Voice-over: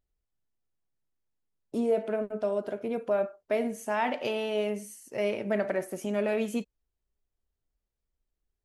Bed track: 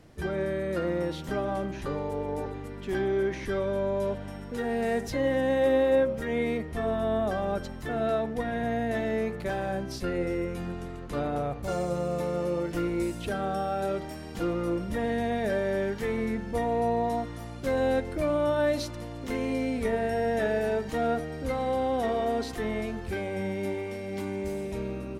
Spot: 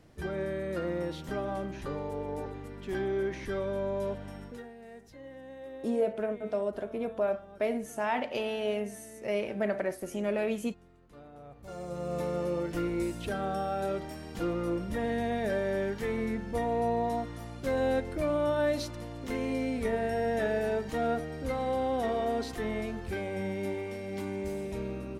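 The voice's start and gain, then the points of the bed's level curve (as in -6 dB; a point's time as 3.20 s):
4.10 s, -2.0 dB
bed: 4.46 s -4 dB
4.74 s -21 dB
11.34 s -21 dB
12.19 s -2.5 dB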